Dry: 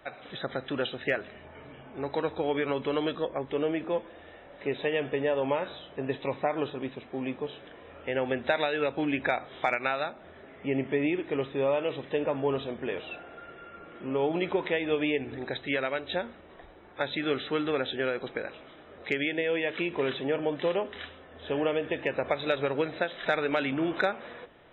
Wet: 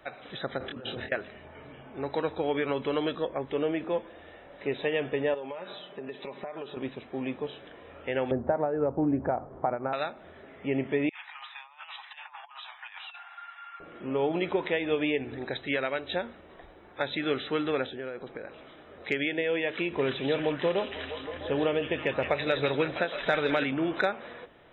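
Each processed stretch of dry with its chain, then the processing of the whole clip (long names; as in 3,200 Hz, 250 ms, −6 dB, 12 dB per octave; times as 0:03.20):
0:00.58–0:01.12: high-shelf EQ 2,200 Hz −11 dB + compressor whose output falls as the input rises −41 dBFS + double-tracking delay 25 ms −2.5 dB
0:05.34–0:06.77: high-pass filter 170 Hz + comb filter 5 ms, depth 48% + downward compressor 5 to 1, threshold −35 dBFS
0:08.31–0:09.93: low-pass filter 1,100 Hz 24 dB per octave + low-shelf EQ 190 Hz +10 dB
0:11.09–0:13.80: Butterworth high-pass 800 Hz 72 dB per octave + compressor whose output falls as the input rises −44 dBFS, ratio −0.5
0:17.86–0:18.58: high-shelf EQ 2,600 Hz −11 dB + downward compressor 2 to 1, threshold −38 dBFS
0:19.92–0:23.64: low-shelf EQ 140 Hz +7.5 dB + echo through a band-pass that steps 163 ms, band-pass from 3,500 Hz, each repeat −0.7 octaves, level −0.5 dB
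whole clip: no processing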